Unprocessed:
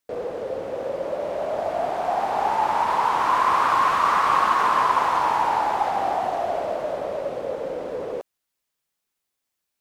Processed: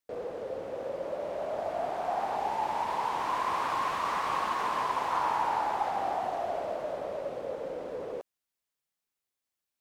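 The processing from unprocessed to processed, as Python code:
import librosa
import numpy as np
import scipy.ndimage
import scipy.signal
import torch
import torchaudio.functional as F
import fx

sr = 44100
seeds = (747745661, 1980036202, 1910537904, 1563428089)

y = fx.peak_eq(x, sr, hz=1300.0, db=-7.0, octaves=0.66, at=(2.36, 5.11))
y = F.gain(torch.from_numpy(y), -7.5).numpy()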